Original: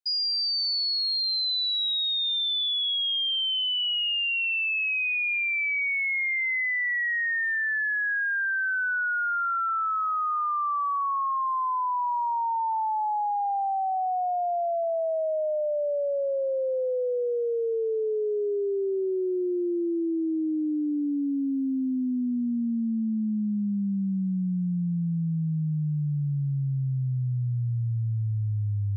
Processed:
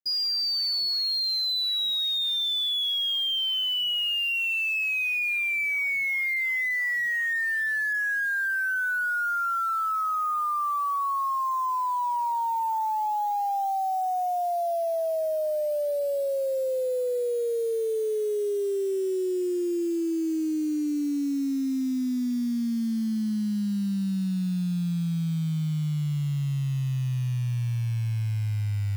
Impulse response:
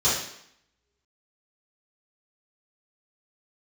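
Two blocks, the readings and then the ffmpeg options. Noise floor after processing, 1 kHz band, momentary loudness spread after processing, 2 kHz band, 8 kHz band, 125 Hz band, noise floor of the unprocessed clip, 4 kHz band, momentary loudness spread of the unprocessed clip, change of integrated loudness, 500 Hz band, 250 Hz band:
-27 dBFS, 0.0 dB, 4 LU, 0.0 dB, n/a, 0.0 dB, -27 dBFS, 0.0 dB, 4 LU, 0.0 dB, 0.0 dB, 0.0 dB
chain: -af "acrusher=bits=8:dc=4:mix=0:aa=0.000001"

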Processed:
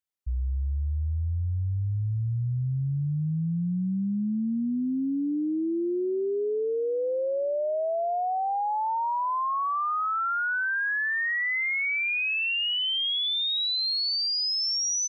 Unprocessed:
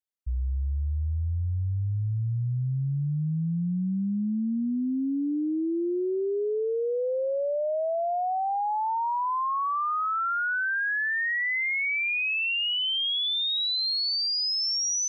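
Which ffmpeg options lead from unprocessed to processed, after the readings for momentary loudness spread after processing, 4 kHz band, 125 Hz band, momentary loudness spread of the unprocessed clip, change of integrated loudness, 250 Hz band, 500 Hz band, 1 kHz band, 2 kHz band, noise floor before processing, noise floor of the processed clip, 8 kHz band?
5 LU, 0.0 dB, 0.0 dB, 5 LU, 0.0 dB, 0.0 dB, 0.0 dB, 0.0 dB, 0.0 dB, -27 dBFS, -27 dBFS, n/a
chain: -filter_complex "[0:a]asplit=2[a][b];[b]adelay=1458,volume=-28dB,highshelf=f=4k:g=-32.8[c];[a][c]amix=inputs=2:normalize=0"

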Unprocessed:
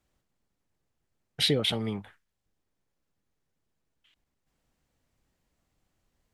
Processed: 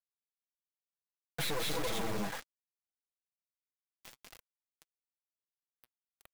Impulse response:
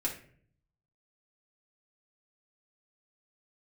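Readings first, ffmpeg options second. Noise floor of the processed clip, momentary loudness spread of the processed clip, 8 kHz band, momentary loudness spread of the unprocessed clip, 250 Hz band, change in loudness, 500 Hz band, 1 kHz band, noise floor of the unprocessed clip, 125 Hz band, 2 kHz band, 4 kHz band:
under -85 dBFS, 20 LU, +0.5 dB, 12 LU, -7.5 dB, -9.0 dB, -5.5 dB, +4.5 dB, -81 dBFS, -9.0 dB, -1.0 dB, -10.5 dB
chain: -filter_complex "[0:a]firequalizer=gain_entry='entry(190,0);entry(640,11);entry(6500,-11);entry(11000,8)':delay=0.05:min_phase=1,asplit=2[a][b];[b]aecho=0:1:192.4|277:0.891|0.794[c];[a][c]amix=inputs=2:normalize=0,aeval=exprs='(tanh(44.7*val(0)+0.35)-tanh(0.35))/44.7':c=same,bandreject=f=3k:w=7,acrossover=split=230|2300[d][e][f];[d]dynaudnorm=f=600:g=5:m=3dB[g];[g][e][f]amix=inputs=3:normalize=0,aecho=1:1:6.1:0.91,acompressor=threshold=-54dB:ratio=2,acrusher=bits=8:mix=0:aa=0.000001,flanger=delay=1.4:depth=8.8:regen=35:speed=1.6:shape=triangular,aeval=exprs='0.0168*sin(PI/2*2.51*val(0)/0.0168)':c=same,volume=5.5dB"

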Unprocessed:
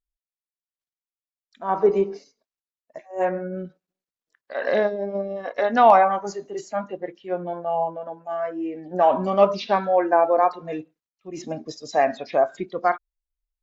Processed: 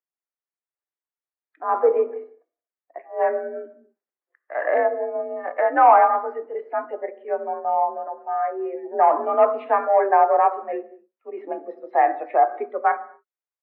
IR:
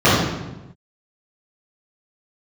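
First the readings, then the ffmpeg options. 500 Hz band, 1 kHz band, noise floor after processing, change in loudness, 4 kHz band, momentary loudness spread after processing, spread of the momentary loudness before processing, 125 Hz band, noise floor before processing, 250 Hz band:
0.0 dB, +3.0 dB, under -85 dBFS, +1.0 dB, under -15 dB, 16 LU, 16 LU, under -30 dB, under -85 dBFS, -7.5 dB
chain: -filter_complex "[0:a]acontrast=44,asplit=2[a][b];[1:a]atrim=start_sample=2205,afade=t=out:st=0.31:d=0.01,atrim=end_sample=14112[c];[b][c]afir=irnorm=-1:irlink=0,volume=-41.5dB[d];[a][d]amix=inputs=2:normalize=0,highpass=f=290:t=q:w=0.5412,highpass=f=290:t=q:w=1.307,lowpass=f=2.1k:t=q:w=0.5176,lowpass=f=2.1k:t=q:w=0.7071,lowpass=f=2.1k:t=q:w=1.932,afreqshift=51,volume=-4dB"

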